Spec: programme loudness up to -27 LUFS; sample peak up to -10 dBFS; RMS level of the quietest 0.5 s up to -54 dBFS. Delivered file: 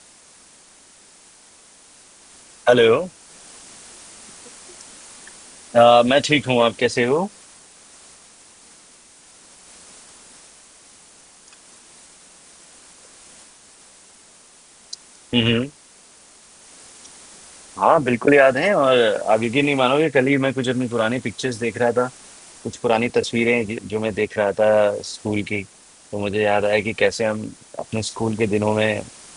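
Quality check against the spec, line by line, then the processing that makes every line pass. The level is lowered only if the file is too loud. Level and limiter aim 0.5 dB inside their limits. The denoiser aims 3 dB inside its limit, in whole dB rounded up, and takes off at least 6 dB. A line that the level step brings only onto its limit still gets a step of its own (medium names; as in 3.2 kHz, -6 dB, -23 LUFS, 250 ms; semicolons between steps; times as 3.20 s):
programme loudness -19.0 LUFS: fail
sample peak -1.5 dBFS: fail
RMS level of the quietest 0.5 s -49 dBFS: fail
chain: trim -8.5 dB; peak limiter -10.5 dBFS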